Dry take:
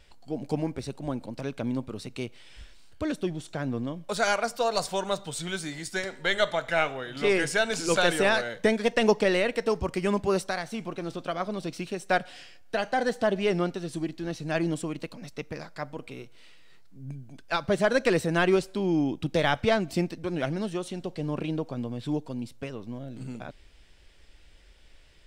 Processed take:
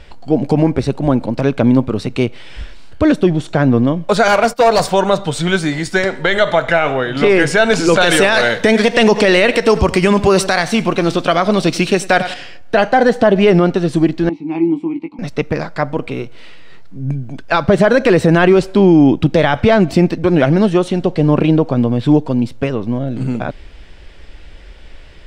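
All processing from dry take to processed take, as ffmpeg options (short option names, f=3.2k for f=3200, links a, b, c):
-filter_complex "[0:a]asettb=1/sr,asplit=3[a][b][c];[a]atrim=end=4.284[d];[b]atrim=start=4.28:end=4.9,asetpts=PTS-STARTPTS,afade=t=in:d=0.004:c=qsin,afade=t=out:st=0.616:d=0.004:c=qsin,highshelf=f=12k:g=12,asoftclip=type=hard:threshold=-25dB,agate=range=-19dB:threshold=-40dB:ratio=16:release=100:detection=peak[e];[c]atrim=start=4.896[f];[d][e]acrossfade=d=0.004:c1=hsin:c2=qsin[g];[g][f]acrossfade=d=0.004:c1=qsin:c2=hsin,asettb=1/sr,asplit=3[h][i][j];[h]atrim=end=8.024[k];[i]atrim=start=8.02:end=12.34,asetpts=PTS-STARTPTS,afade=t=in:d=0.004:c=qsin,afade=t=out:st=4.316:d=0.004:c=qsin,highshelf=f=2.2k:g=11.5,aecho=1:1:94|188|282:0.106|0.0371|0.013,atrim=end_sample=190512[l];[j]atrim=start=12.336[m];[k][l]acrossfade=d=0.004:c1=hsin:c2=qsin[n];[n][m]acrossfade=d=0.004:c1=qsin:c2=hsin,asettb=1/sr,asplit=3[o][p][q];[o]atrim=end=14.294[r];[p]atrim=start=14.29:end=15.19,asetpts=PTS-STARTPTS,afade=t=in:d=0.004:c=qsin,afade=t=out:st=0.896:d=0.004:c=qsin,asplit=3[s][t][u];[s]bandpass=f=300:t=q:w=8,volume=0dB[v];[t]bandpass=f=870:t=q:w=8,volume=-6dB[w];[u]bandpass=f=2.24k:t=q:w=8,volume=-9dB[x];[v][w][x]amix=inputs=3:normalize=0,asplit=2[y][z];[z]adelay=18,volume=-6dB[aa];[y][aa]amix=inputs=2:normalize=0,atrim=end_sample=39690[ab];[q]atrim=start=15.186[ac];[r][ab]acrossfade=d=0.004:c1=hsin:c2=qsin[ad];[ad][ac]acrossfade=d=0.004:c1=qsin:c2=hsin,lowpass=f=2.1k:p=1,alimiter=level_in=20dB:limit=-1dB:release=50:level=0:latency=1,volume=-1dB"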